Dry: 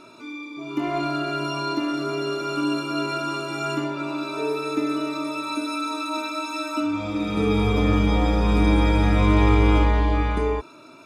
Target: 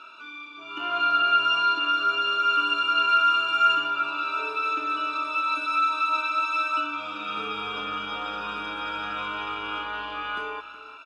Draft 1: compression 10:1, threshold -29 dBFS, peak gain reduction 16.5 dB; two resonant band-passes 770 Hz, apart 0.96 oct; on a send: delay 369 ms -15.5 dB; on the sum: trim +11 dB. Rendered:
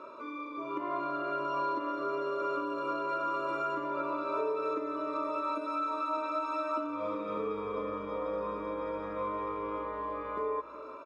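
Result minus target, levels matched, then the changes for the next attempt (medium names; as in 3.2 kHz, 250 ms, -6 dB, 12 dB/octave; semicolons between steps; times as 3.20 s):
compression: peak gain reduction +9.5 dB; 2 kHz band -8.0 dB
change: compression 10:1, threshold -18.5 dBFS, peak gain reduction 7 dB; change: two resonant band-passes 2 kHz, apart 0.96 oct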